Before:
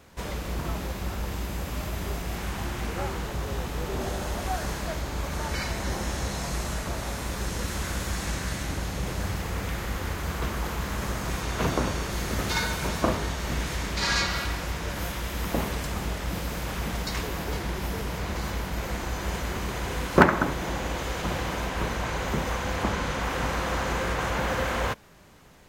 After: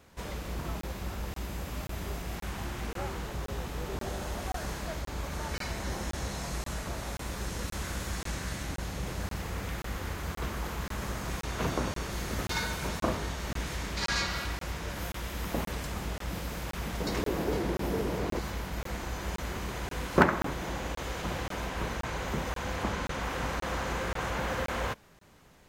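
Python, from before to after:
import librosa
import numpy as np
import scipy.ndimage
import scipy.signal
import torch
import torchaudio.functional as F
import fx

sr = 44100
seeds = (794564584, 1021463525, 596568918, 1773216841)

y = fx.peak_eq(x, sr, hz=360.0, db=11.5, octaves=1.9, at=(17.0, 18.39))
y = fx.buffer_crackle(y, sr, first_s=0.81, period_s=0.53, block=1024, kind='zero')
y = y * librosa.db_to_amplitude(-5.0)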